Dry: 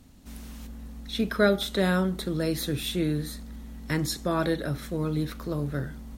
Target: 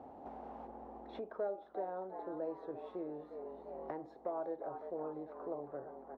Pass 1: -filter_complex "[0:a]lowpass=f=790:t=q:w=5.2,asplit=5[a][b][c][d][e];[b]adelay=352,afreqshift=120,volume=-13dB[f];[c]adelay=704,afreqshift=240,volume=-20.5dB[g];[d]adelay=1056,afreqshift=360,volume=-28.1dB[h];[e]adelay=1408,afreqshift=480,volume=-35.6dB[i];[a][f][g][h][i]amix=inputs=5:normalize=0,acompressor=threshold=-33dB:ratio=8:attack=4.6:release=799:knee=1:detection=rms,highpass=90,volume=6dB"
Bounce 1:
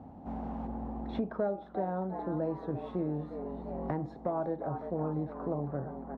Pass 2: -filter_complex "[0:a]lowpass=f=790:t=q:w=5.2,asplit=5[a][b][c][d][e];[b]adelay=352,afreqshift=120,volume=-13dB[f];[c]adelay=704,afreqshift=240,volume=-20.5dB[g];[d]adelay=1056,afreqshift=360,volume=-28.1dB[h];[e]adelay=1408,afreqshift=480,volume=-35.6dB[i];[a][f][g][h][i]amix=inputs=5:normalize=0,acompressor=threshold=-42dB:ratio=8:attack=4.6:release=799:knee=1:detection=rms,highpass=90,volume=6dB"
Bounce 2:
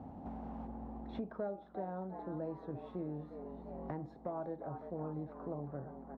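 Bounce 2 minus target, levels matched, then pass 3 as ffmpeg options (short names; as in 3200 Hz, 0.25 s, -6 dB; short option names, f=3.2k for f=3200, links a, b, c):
250 Hz band +4.5 dB
-filter_complex "[0:a]lowpass=f=790:t=q:w=5.2,asplit=5[a][b][c][d][e];[b]adelay=352,afreqshift=120,volume=-13dB[f];[c]adelay=704,afreqshift=240,volume=-20.5dB[g];[d]adelay=1056,afreqshift=360,volume=-28.1dB[h];[e]adelay=1408,afreqshift=480,volume=-35.6dB[i];[a][f][g][h][i]amix=inputs=5:normalize=0,acompressor=threshold=-42dB:ratio=8:attack=4.6:release=799:knee=1:detection=rms,highpass=90,lowshelf=f=270:t=q:w=1.5:g=-13,volume=6dB"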